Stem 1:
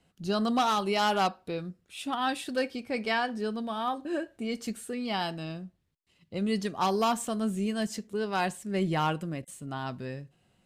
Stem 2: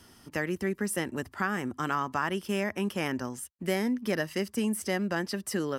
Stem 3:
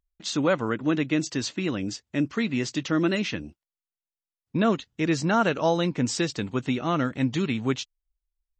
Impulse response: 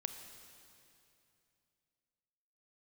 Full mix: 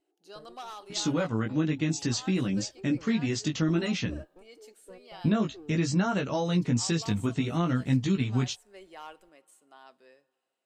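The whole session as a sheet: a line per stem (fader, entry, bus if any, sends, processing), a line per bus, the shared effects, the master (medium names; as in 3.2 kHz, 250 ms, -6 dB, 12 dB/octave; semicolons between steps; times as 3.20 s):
-17.0 dB, 0.00 s, bus A, send -13.5 dB, high-pass 420 Hz 24 dB/octave
-14.0 dB, 0.00 s, no bus, send -15 dB, FFT band-pass 270–880 Hz; one-sided clip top -30.5 dBFS; Shepard-style flanger rising 1.1 Hz
+0.5 dB, 0.70 s, bus A, no send, treble shelf 4.8 kHz +6 dB; chorus 0.54 Hz, delay 15.5 ms, depth 3.5 ms
bus A: 0.0 dB, compression 2:1, threshold -31 dBFS, peak gain reduction 7 dB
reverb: on, RT60 2.7 s, pre-delay 27 ms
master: tone controls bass +10 dB, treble +2 dB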